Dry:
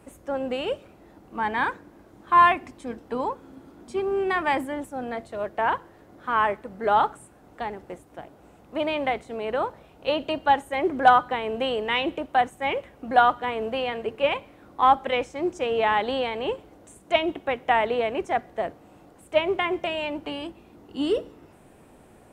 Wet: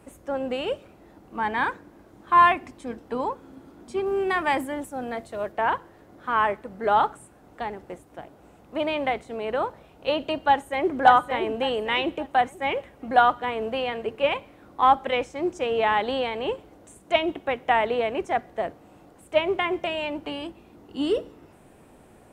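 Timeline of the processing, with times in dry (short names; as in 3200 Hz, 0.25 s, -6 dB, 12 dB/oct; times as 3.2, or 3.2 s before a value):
4.06–5.52 high shelf 6700 Hz +6.5 dB
10.48–10.95 echo throw 0.57 s, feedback 35%, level -5.5 dB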